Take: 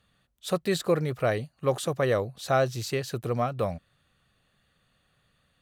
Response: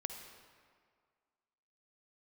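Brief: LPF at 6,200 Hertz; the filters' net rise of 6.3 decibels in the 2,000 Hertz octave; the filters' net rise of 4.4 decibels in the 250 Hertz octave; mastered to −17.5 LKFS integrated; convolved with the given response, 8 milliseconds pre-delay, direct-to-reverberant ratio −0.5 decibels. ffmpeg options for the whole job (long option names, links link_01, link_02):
-filter_complex "[0:a]lowpass=6200,equalizer=frequency=250:width_type=o:gain=6.5,equalizer=frequency=2000:width_type=o:gain=8,asplit=2[link_01][link_02];[1:a]atrim=start_sample=2205,adelay=8[link_03];[link_02][link_03]afir=irnorm=-1:irlink=0,volume=1.5dB[link_04];[link_01][link_04]amix=inputs=2:normalize=0,volume=4.5dB"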